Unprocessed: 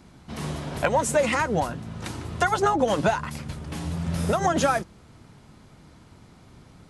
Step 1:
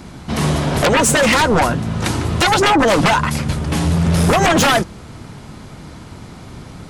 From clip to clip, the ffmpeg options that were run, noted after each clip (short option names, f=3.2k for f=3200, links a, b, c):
-af "aeval=exprs='0.398*sin(PI/2*4.47*val(0)/0.398)':c=same,volume=-1.5dB"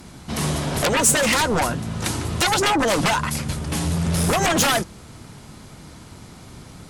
-af "aemphasis=mode=production:type=cd,volume=-6.5dB"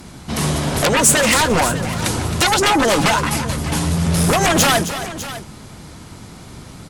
-af "aecho=1:1:266|601:0.251|0.188,volume=4dB"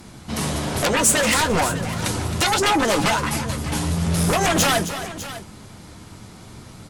-af "flanger=delay=9.1:depth=1.6:regen=-52:speed=0.3:shape=triangular"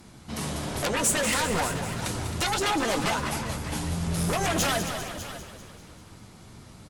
-filter_complex "[0:a]asplit=8[a][b][c][d][e][f][g][h];[b]adelay=197,afreqshift=-41,volume=-10dB[i];[c]adelay=394,afreqshift=-82,volume=-14.7dB[j];[d]adelay=591,afreqshift=-123,volume=-19.5dB[k];[e]adelay=788,afreqshift=-164,volume=-24.2dB[l];[f]adelay=985,afreqshift=-205,volume=-28.9dB[m];[g]adelay=1182,afreqshift=-246,volume=-33.7dB[n];[h]adelay=1379,afreqshift=-287,volume=-38.4dB[o];[a][i][j][k][l][m][n][o]amix=inputs=8:normalize=0,volume=-7.5dB"